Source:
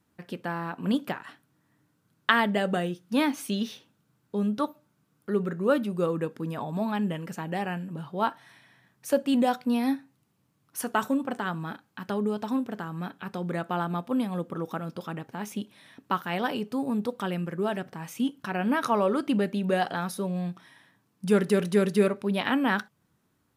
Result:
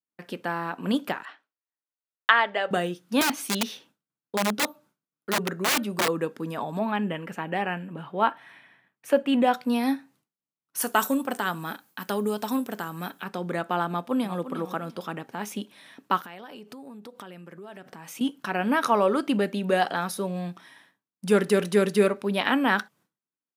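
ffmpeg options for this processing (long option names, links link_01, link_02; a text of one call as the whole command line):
ffmpeg -i in.wav -filter_complex "[0:a]asettb=1/sr,asplit=3[link_01][link_02][link_03];[link_01]atrim=end=1.254[link_04];[link_02]atrim=start=1.25:end=2.71,asetpts=PTS-STARTPTS,afade=type=in:duration=0.004:curve=qsin,afade=type=out:start_time=1.456:duration=0.004:curve=qsin,highpass=580,lowpass=3500[link_05];[link_03]atrim=start=2.706[link_06];[link_04][link_05]acrossfade=duration=0.004:curve1=hsin:curve2=qsin[link_07];[link_07][link_06]acrossfade=duration=0.004:curve1=qsin:curve2=hsin,asettb=1/sr,asplit=3[link_08][link_09][link_10];[link_08]atrim=end=3.214[link_11];[link_09]atrim=start=3.21:end=6.08,asetpts=PTS-STARTPTS,afade=type=in:duration=0.004:curve=qsin,afade=type=out:start_time=2.866:duration=0.004:curve=qsin,aeval=exprs='(mod(11.9*val(0)+1,2)-1)/11.9':channel_layout=same[link_12];[link_10]atrim=start=6.076[link_13];[link_11][link_12]acrossfade=duration=0.004:curve1=hsin:curve2=qsin[link_14];[link_14][link_13]acrossfade=duration=0.004:curve1=qsin:curve2=hsin,asettb=1/sr,asplit=3[link_15][link_16][link_17];[link_15]atrim=end=6.794[link_18];[link_16]atrim=start=6.79:end=9.54,asetpts=PTS-STARTPTS,afade=type=in:duration=0.004:curve=qsin,afade=type=out:start_time=2.746:duration=0.004:curve=qsin,highshelf=frequency=3600:width_type=q:width=1.5:gain=-8.5[link_19];[link_17]atrim=start=9.536[link_20];[link_18][link_19]acrossfade=duration=0.004:curve1=hsin:curve2=qsin[link_21];[link_21][link_20]acrossfade=duration=0.004:curve1=qsin:curve2=hsin,asettb=1/sr,asplit=3[link_22][link_23][link_24];[link_22]atrim=end=10.814[link_25];[link_23]atrim=start=10.81:end=13.24,asetpts=PTS-STARTPTS,afade=type=in:duration=0.004:curve=qsin,afade=type=out:start_time=2.426:duration=0.004:curve=qsin,aemphasis=mode=production:type=50fm[link_26];[link_24]atrim=start=13.236[link_27];[link_25][link_26]acrossfade=duration=0.004:curve1=hsin:curve2=qsin[link_28];[link_28][link_27]acrossfade=duration=0.004:curve1=qsin:curve2=hsin,asplit=2[link_29][link_30];[link_30]afade=type=in:start_time=13.88:duration=0.01,afade=type=out:start_time=14.39:duration=0.01,aecho=0:1:350|700|1050:0.266073|0.0532145|0.0106429[link_31];[link_29][link_31]amix=inputs=2:normalize=0,asettb=1/sr,asplit=3[link_32][link_33][link_34];[link_32]atrim=end=16.194[link_35];[link_33]atrim=start=16.19:end=18.21,asetpts=PTS-STARTPTS,afade=type=in:duration=0.004:curve=qsin,afade=type=out:start_time=2.016:duration=0.004:curve=qsin,acompressor=threshold=-40dB:ratio=20:attack=3.2:release=140:knee=1:detection=peak[link_36];[link_34]atrim=start=18.206[link_37];[link_35][link_36]acrossfade=duration=0.004:curve1=hsin:curve2=qsin[link_38];[link_38][link_37]acrossfade=duration=0.004:curve1=qsin:curve2=hsin,lowshelf=frequency=350:gain=-3.5,agate=range=-33dB:threshold=-55dB:ratio=3:detection=peak,highpass=180,volume=4dB" out.wav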